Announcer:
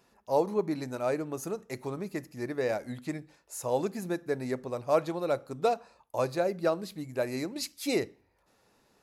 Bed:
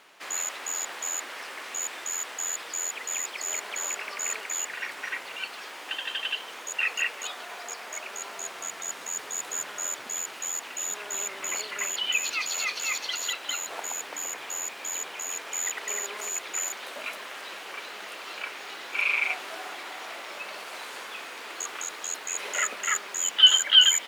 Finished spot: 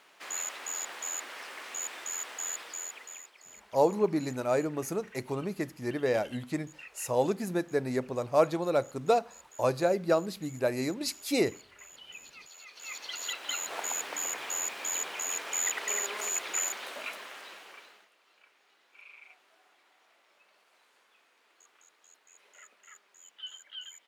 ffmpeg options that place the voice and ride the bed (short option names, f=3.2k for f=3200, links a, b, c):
-filter_complex "[0:a]adelay=3450,volume=2dB[a];[1:a]volume=17dB,afade=t=out:st=2.51:d=0.8:silence=0.141254,afade=t=in:st=12.69:d=1.21:silence=0.0841395,afade=t=out:st=16.53:d=1.56:silence=0.0421697[b];[a][b]amix=inputs=2:normalize=0"